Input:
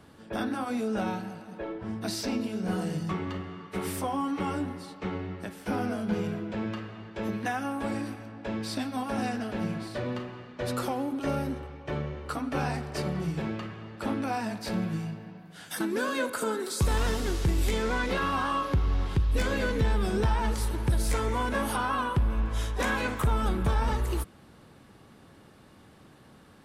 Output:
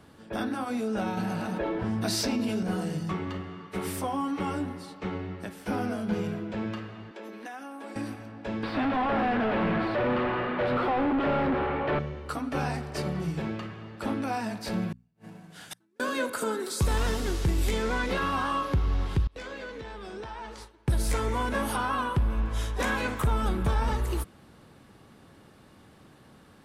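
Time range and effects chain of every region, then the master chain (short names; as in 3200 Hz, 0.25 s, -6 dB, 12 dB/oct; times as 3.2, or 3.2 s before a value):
1.17–2.63 doubler 17 ms -10 dB + fast leveller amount 70%
7.11–7.96 HPF 260 Hz 24 dB/oct + compressor 2.5:1, threshold -41 dBFS
8.63–11.99 overdrive pedal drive 35 dB, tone 3000 Hz, clips at -18 dBFS + air absorption 450 m
14.92–16 CVSD 64 kbps + flipped gate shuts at -27 dBFS, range -41 dB + notches 60/120/180/240 Hz
19.27–20.88 gate with hold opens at -18 dBFS, closes at -27 dBFS + three-band isolator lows -13 dB, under 290 Hz, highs -16 dB, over 7100 Hz + compressor 1.5:1, threshold -51 dBFS
whole clip: dry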